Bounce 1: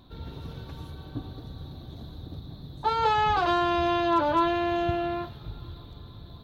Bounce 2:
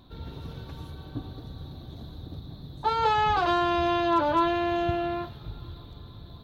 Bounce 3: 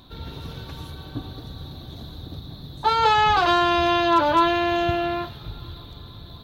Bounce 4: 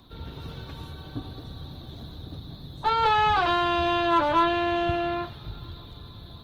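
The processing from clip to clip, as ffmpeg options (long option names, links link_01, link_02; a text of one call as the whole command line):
ffmpeg -i in.wav -af anull out.wav
ffmpeg -i in.wav -af "tiltshelf=frequency=1300:gain=-3.5,volume=6.5dB" out.wav
ffmpeg -i in.wav -filter_complex "[0:a]acrossover=split=4300[link_01][link_02];[link_02]acompressor=threshold=-54dB:ratio=4:attack=1:release=60[link_03];[link_01][link_03]amix=inputs=2:normalize=0,acrossover=split=260|1100|2400[link_04][link_05][link_06][link_07];[link_05]aeval=exprs='clip(val(0),-1,0.075)':channel_layout=same[link_08];[link_04][link_08][link_06][link_07]amix=inputs=4:normalize=0,volume=-2.5dB" -ar 48000 -c:a libopus -b:a 24k out.opus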